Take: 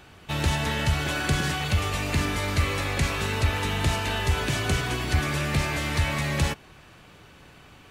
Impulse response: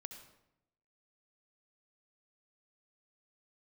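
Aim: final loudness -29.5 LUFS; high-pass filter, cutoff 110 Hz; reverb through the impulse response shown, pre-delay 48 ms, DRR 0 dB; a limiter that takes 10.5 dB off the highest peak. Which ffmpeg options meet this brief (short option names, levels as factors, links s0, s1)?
-filter_complex "[0:a]highpass=110,alimiter=limit=0.075:level=0:latency=1,asplit=2[s0][s1];[1:a]atrim=start_sample=2205,adelay=48[s2];[s1][s2]afir=irnorm=-1:irlink=0,volume=1.68[s3];[s0][s3]amix=inputs=2:normalize=0,volume=0.794"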